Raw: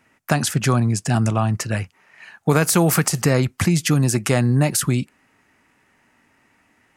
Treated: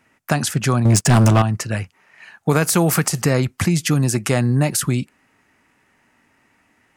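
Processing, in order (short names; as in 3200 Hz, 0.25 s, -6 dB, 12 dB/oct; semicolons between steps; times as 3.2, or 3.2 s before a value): 0.85–1.42 sample leveller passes 3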